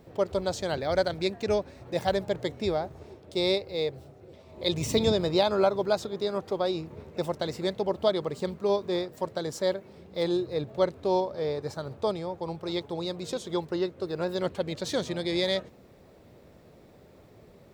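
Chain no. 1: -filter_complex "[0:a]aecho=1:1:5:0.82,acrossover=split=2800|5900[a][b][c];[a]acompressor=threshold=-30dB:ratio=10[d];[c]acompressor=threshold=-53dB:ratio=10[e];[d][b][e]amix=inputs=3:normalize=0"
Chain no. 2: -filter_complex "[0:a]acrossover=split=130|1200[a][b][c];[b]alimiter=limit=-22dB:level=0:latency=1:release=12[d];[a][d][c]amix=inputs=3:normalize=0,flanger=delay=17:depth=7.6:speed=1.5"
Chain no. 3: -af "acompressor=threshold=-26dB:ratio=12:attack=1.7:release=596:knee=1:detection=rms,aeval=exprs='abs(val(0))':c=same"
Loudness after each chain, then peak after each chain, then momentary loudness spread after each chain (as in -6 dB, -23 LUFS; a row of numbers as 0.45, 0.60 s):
-34.0, -34.0, -40.5 LUFS; -13.0, -16.0, -20.0 dBFS; 21, 7, 19 LU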